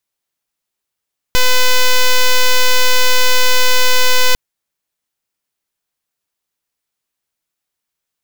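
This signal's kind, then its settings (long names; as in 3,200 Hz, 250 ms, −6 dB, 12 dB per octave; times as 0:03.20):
pulse wave 504 Hz, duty 5% −8.5 dBFS 3.00 s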